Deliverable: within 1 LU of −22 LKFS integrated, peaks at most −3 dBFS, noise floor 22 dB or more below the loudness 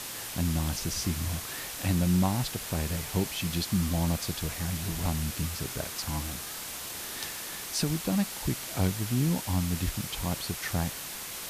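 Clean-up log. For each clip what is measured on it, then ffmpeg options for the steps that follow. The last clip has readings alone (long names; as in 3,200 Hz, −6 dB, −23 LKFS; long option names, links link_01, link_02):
background noise floor −39 dBFS; target noise floor −53 dBFS; integrated loudness −30.5 LKFS; sample peak −15.5 dBFS; target loudness −22.0 LKFS
→ -af "afftdn=noise_reduction=14:noise_floor=-39"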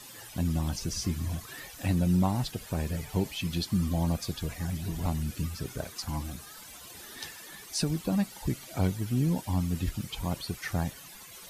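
background noise floor −48 dBFS; target noise floor −54 dBFS
→ -af "afftdn=noise_reduction=6:noise_floor=-48"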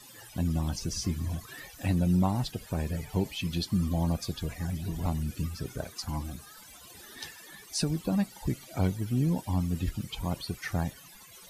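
background noise floor −51 dBFS; target noise floor −54 dBFS
→ -af "afftdn=noise_reduction=6:noise_floor=-51"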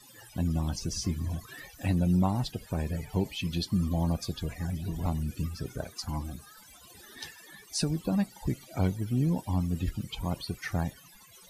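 background noise floor −54 dBFS; integrated loudness −31.5 LKFS; sample peak −16.5 dBFS; target loudness −22.0 LKFS
→ -af "volume=9.5dB"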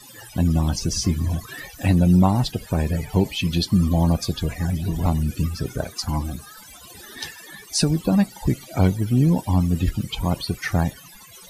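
integrated loudness −22.0 LKFS; sample peak −7.0 dBFS; background noise floor −45 dBFS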